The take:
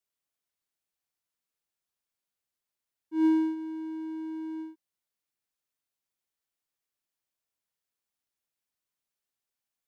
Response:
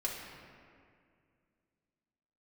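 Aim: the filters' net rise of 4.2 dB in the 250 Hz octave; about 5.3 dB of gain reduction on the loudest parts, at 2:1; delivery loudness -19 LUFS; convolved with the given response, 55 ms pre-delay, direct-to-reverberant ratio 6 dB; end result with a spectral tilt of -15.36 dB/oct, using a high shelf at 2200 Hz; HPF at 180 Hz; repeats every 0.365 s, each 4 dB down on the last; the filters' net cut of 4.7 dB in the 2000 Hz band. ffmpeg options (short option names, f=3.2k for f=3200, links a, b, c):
-filter_complex "[0:a]highpass=180,equalizer=f=250:t=o:g=7,equalizer=f=2k:t=o:g=-9,highshelf=f=2.2k:g=4.5,acompressor=threshold=-26dB:ratio=2,aecho=1:1:365|730|1095|1460|1825|2190|2555|2920|3285:0.631|0.398|0.25|0.158|0.0994|0.0626|0.0394|0.0249|0.0157,asplit=2[a][b];[1:a]atrim=start_sample=2205,adelay=55[c];[b][c]afir=irnorm=-1:irlink=0,volume=-9.5dB[d];[a][d]amix=inputs=2:normalize=0,volume=7.5dB"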